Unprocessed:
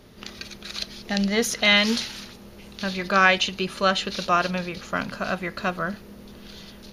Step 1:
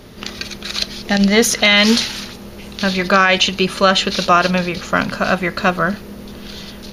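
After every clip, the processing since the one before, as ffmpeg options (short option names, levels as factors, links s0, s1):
-af "alimiter=level_in=3.76:limit=0.891:release=50:level=0:latency=1,volume=0.891"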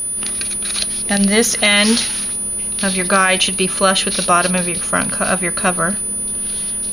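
-af "aeval=exprs='val(0)+0.126*sin(2*PI*9900*n/s)':c=same,volume=0.841"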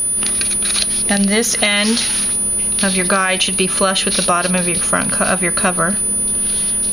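-af "acompressor=threshold=0.158:ratio=6,volume=1.68"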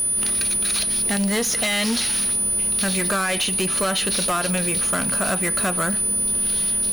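-af "asoftclip=type=hard:threshold=0.188,volume=0.631"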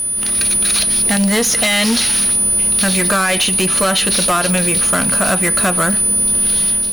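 -af "bandreject=f=400:w=13,dynaudnorm=f=210:g=3:m=1.78,volume=1.33" -ar 44100 -c:a libmp3lame -b:a 112k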